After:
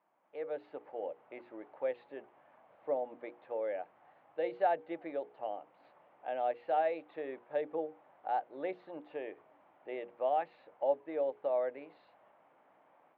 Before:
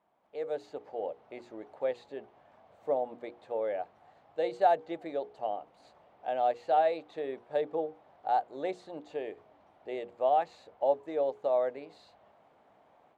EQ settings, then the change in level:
loudspeaker in its box 210–2,700 Hz, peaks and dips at 220 Hz −6 dB, 420 Hz −6 dB, 700 Hz −5 dB
dynamic equaliser 1,100 Hz, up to −5 dB, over −46 dBFS, Q 1.6
0.0 dB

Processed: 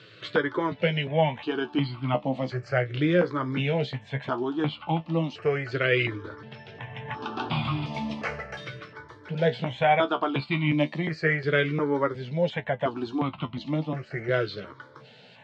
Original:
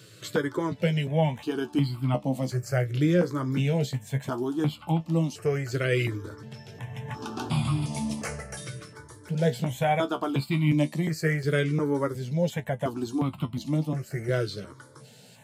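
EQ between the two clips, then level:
low-pass filter 3,600 Hz 24 dB per octave
low-shelf EQ 360 Hz −11 dB
+6.0 dB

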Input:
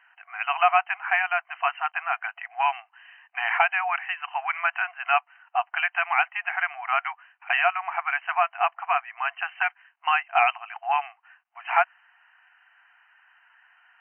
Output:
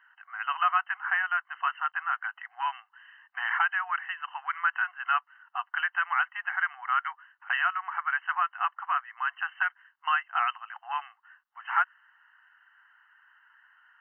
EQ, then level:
dynamic equaliser 810 Hz, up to −5 dB, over −34 dBFS, Q 3.1
phaser with its sweep stopped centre 2,400 Hz, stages 6
0.0 dB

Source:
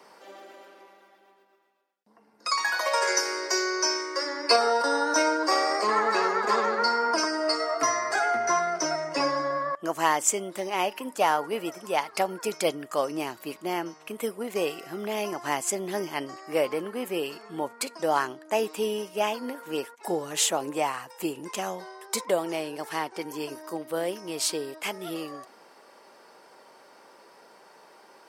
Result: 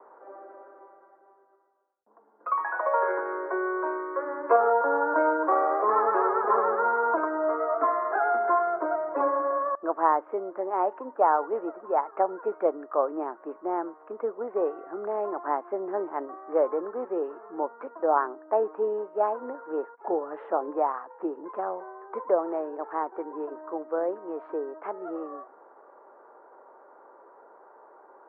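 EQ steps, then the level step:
high-pass filter 320 Hz 24 dB per octave
Butterworth low-pass 1,400 Hz 36 dB per octave
+2.0 dB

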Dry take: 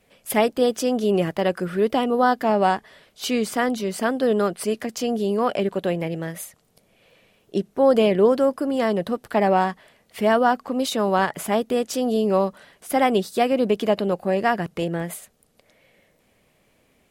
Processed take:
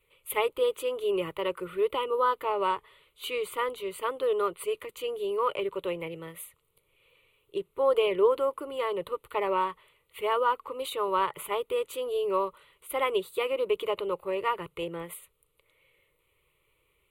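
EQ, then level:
graphic EQ with 15 bands 100 Hz −4 dB, 250 Hz −11 dB, 630 Hz −9 dB, 6,300 Hz −7 dB
dynamic equaliser 810 Hz, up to +6 dB, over −37 dBFS, Q 0.73
phaser with its sweep stopped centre 1,100 Hz, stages 8
−3.5 dB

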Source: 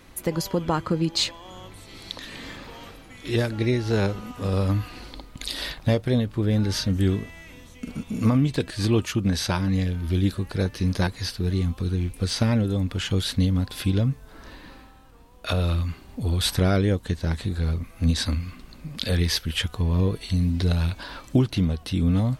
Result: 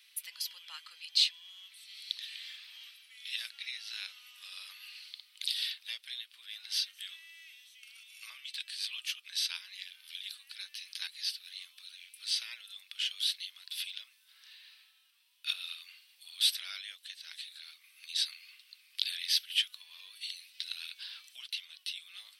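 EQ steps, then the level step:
four-pole ladder high-pass 2,400 Hz, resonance 35%
parametric band 6,900 Hz −13 dB 0.21 octaves
+3.0 dB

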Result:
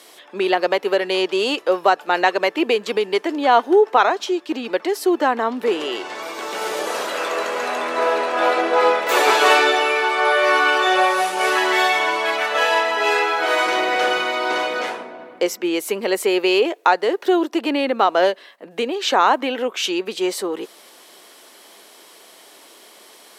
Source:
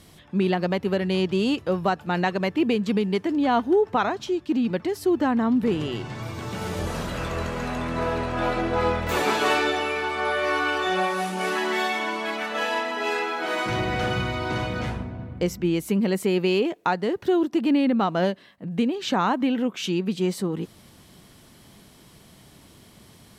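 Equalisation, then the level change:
high-pass filter 390 Hz 24 dB per octave
+8.5 dB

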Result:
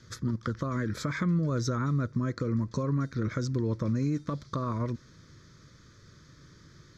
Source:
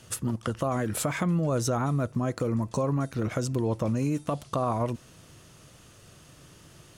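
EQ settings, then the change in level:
low-pass filter 6,400 Hz 12 dB per octave
phaser with its sweep stopped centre 2,800 Hz, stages 6
0.0 dB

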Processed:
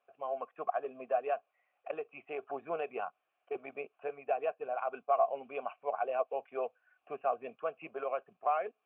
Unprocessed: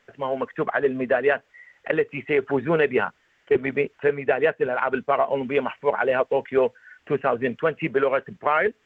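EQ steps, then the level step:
formant filter a
high-frequency loss of the air 170 metres
−2.0 dB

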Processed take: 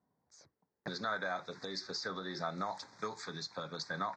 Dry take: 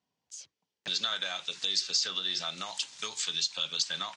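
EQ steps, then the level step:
Butterworth band-reject 2,900 Hz, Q 1.2
head-to-tape spacing loss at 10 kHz 38 dB
+7.5 dB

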